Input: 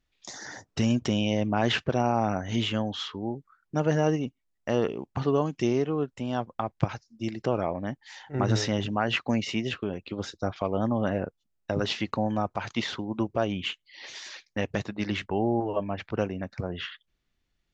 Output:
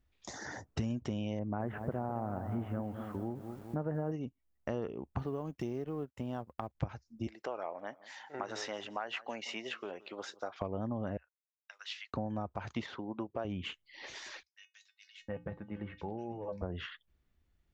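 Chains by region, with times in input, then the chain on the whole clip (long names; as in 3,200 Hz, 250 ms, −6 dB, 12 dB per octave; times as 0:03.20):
0:01.39–0:04.12: low-pass filter 1,700 Hz 24 dB per octave + feedback echo at a low word length 209 ms, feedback 55%, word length 8 bits, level −11 dB
0:05.19–0:06.75: mu-law and A-law mismatch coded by A + downward compressor 1.5 to 1, threshold −32 dBFS
0:07.27–0:10.60: high-pass filter 660 Hz + repeating echo 173 ms, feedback 31%, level −22 dB
0:11.17–0:12.14: Bessel high-pass filter 2,700 Hz, order 4 + downward expander −57 dBFS + high-shelf EQ 6,000 Hz −10 dB
0:12.86–0:13.45: high-pass filter 440 Hz 6 dB per octave + high-frequency loss of the air 110 metres
0:14.43–0:16.62: mains-hum notches 60/120/180/240/300 Hz + tuned comb filter 170 Hz, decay 0.18 s, harmonics odd, mix 80% + multiband delay without the direct sound highs, lows 720 ms, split 2,500 Hz
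whole clip: parametric band 4,600 Hz −8.5 dB 2.5 octaves; downward compressor 3 to 1, threshold −38 dBFS; parametric band 68 Hz +10 dB 0.72 octaves; level +1 dB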